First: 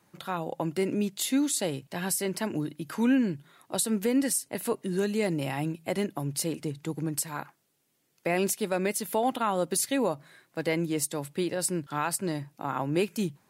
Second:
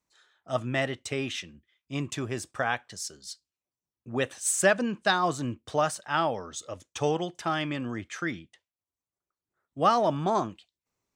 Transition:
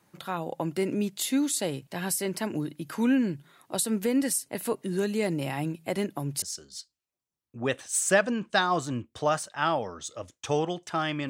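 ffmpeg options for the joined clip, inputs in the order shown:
ffmpeg -i cue0.wav -i cue1.wav -filter_complex "[0:a]apad=whole_dur=11.29,atrim=end=11.29,atrim=end=6.422[link_01];[1:a]atrim=start=2.938:end=7.81[link_02];[link_01][link_02]acrossfade=duration=0.004:curve1=hsin:curve2=hsin" out.wav

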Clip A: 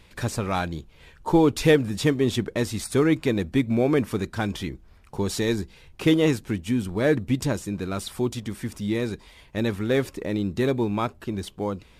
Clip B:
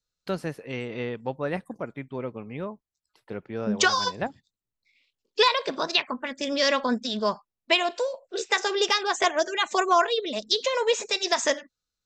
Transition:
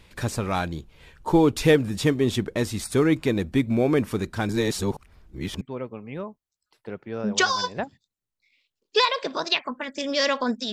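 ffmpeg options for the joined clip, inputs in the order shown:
ffmpeg -i cue0.wav -i cue1.wav -filter_complex "[0:a]apad=whole_dur=10.72,atrim=end=10.72,asplit=2[link_01][link_02];[link_01]atrim=end=4.492[link_03];[link_02]atrim=start=4.488:end=5.612,asetpts=PTS-STARTPTS,areverse[link_04];[1:a]atrim=start=2.038:end=7.15[link_05];[link_03][link_04]acrossfade=duration=0.004:curve1=hsin:curve2=hsin[link_06];[link_06][link_05]acrossfade=duration=0.004:curve1=hsin:curve2=hsin" out.wav

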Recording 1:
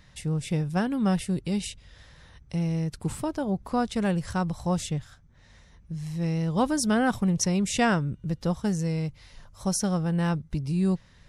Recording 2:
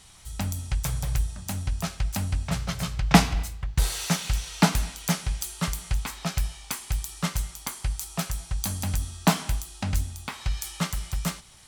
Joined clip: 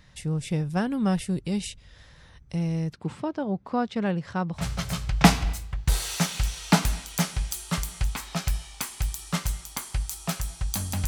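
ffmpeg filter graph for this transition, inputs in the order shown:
ffmpeg -i cue0.wav -i cue1.wav -filter_complex "[0:a]asettb=1/sr,asplit=3[link_01][link_02][link_03];[link_01]atrim=end=2.934[link_04];[link_02]atrim=start=2.93:end=4.66,asetpts=PTS-STARTPTS,afade=type=in:duration=0.004:curve=qsin,afade=type=out:start_time=1.726:duration=0.004:curve=qsin,highpass=140,lowpass=3800[link_05];[link_03]atrim=start=4.656[link_06];[link_04][link_05]acrossfade=duration=0.004:curve1=hsin:curve2=qsin[link_07];[link_07][link_06]acrossfade=duration=0.004:curve1=qsin:curve2=hsin,apad=whole_dur=11.07,atrim=end=11.07,atrim=end=4.66,asetpts=PTS-STARTPTS[link_08];[1:a]atrim=start=2.42:end=8.97,asetpts=PTS-STARTPTS[link_09];[link_08][link_09]acrossfade=duration=0.14:curve1=tri:curve2=tri" out.wav

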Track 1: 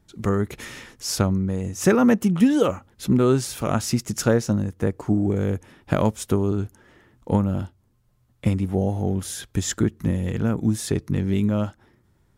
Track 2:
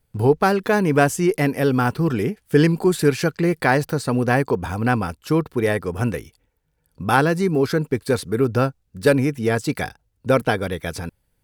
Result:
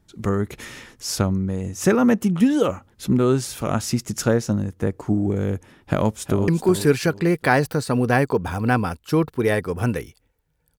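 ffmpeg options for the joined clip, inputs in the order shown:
ffmpeg -i cue0.wav -i cue1.wav -filter_complex "[0:a]apad=whole_dur=10.78,atrim=end=10.78,atrim=end=6.482[link_01];[1:a]atrim=start=2.658:end=6.96[link_02];[link_01][link_02]acrossfade=duration=0.004:curve1=hsin:curve2=hsin,asplit=2[link_03][link_04];[link_04]afade=type=in:start_time=5.79:duration=0.01,afade=type=out:start_time=6.48:duration=0.01,aecho=0:1:370|740|1110:0.334965|0.10049|0.0301469[link_05];[link_03][link_05]amix=inputs=2:normalize=0" out.wav

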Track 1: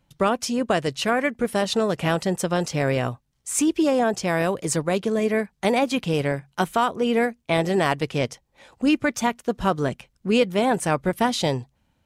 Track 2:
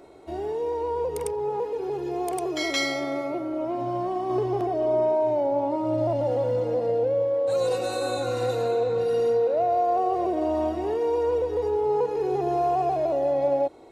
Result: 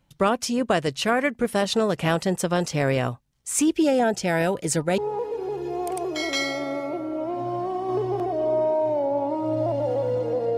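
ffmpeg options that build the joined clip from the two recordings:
ffmpeg -i cue0.wav -i cue1.wav -filter_complex "[0:a]asettb=1/sr,asplit=3[link_01][link_02][link_03];[link_01]atrim=end=3.734[link_04];[link_02]atrim=start=3.73:end=4.98,asetpts=PTS-STARTPTS,afade=type=in:duration=0.004:curve=qsin,afade=type=out:start_time=1.246:duration=0.004:curve=qsin,asuperstop=centerf=1100:order=20:qfactor=5.5[link_05];[link_03]atrim=start=4.976[link_06];[link_04][link_05]acrossfade=duration=0.004:curve1=hsin:curve2=qsin[link_07];[link_07][link_06]acrossfade=duration=0.004:curve1=qsin:curve2=hsin,apad=whole_dur=10.57,atrim=end=10.57,atrim=end=4.982[link_08];[1:a]atrim=start=1.388:end=6.98[link_09];[link_08][link_09]acrossfade=duration=0.004:curve1=hsin:curve2=hsin" out.wav

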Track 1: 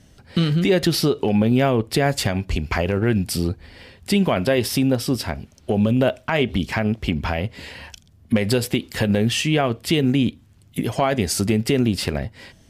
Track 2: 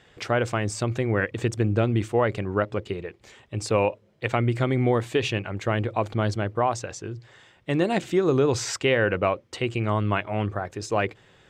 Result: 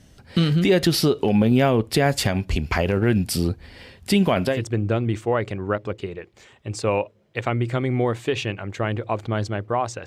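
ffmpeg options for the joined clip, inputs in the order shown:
ffmpeg -i cue0.wav -i cue1.wav -filter_complex "[0:a]apad=whole_dur=10.06,atrim=end=10.06,atrim=end=4.65,asetpts=PTS-STARTPTS[link_01];[1:a]atrim=start=1.3:end=6.93,asetpts=PTS-STARTPTS[link_02];[link_01][link_02]acrossfade=duration=0.22:curve1=tri:curve2=tri" out.wav

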